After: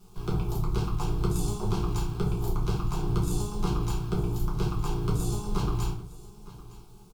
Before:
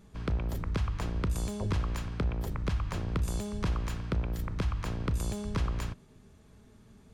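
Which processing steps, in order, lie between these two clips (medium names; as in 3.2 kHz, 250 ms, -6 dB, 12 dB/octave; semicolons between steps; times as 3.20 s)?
bit crusher 10-bit; Chebyshev shaper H 6 -18 dB, 7 -31 dB, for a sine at -21 dBFS; static phaser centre 370 Hz, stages 8; on a send: delay 911 ms -18.5 dB; on the sum: simulated room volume 34 m³, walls mixed, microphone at 0.93 m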